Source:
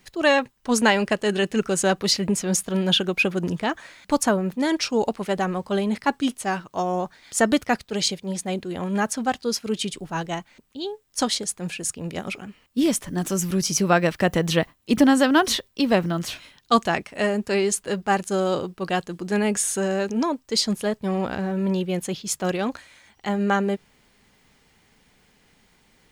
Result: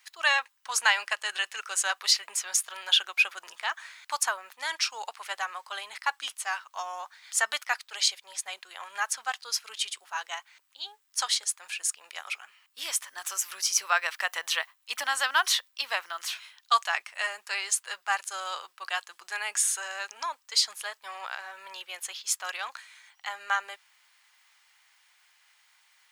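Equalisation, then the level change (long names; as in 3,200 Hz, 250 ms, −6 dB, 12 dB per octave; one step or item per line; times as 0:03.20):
high-pass filter 990 Hz 24 dB per octave
−1.0 dB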